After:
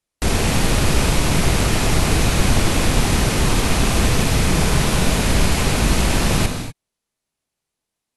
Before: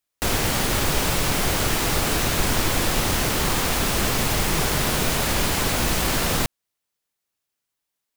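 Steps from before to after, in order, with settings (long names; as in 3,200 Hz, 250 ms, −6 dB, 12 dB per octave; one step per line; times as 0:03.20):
loose part that buzzes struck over −31 dBFS, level −22 dBFS
bass and treble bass +5 dB, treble 0 dB
in parallel at −10 dB: decimation without filtering 25×
on the sum: linear-phase brick-wall low-pass 12,000 Hz
reverb whose tail is shaped and stops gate 270 ms flat, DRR 5 dB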